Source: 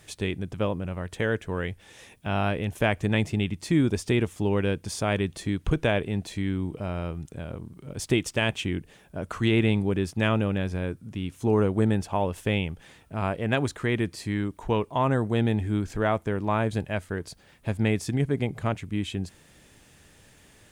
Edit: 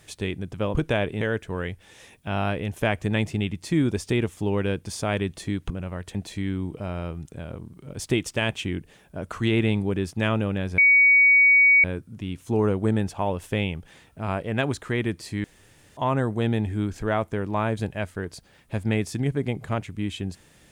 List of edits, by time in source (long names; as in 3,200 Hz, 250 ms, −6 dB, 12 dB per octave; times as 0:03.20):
0:00.75–0:01.20: swap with 0:05.69–0:06.15
0:10.78: insert tone 2,250 Hz −12.5 dBFS 1.06 s
0:14.38–0:14.91: fill with room tone